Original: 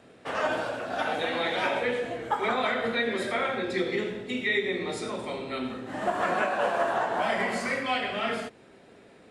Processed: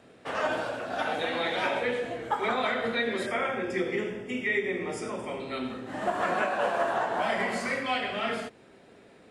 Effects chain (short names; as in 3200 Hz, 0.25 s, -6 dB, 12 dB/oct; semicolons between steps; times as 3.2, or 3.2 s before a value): 3.26–5.4 Butterworth band-stop 4000 Hz, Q 2.8; gain -1 dB